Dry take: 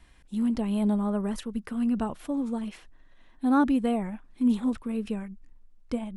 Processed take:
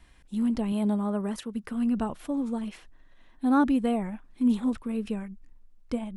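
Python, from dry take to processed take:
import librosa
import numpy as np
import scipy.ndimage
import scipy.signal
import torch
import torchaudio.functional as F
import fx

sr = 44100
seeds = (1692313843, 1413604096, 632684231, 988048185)

y = fx.highpass(x, sr, hz=120.0, slope=6, at=(0.72, 1.64))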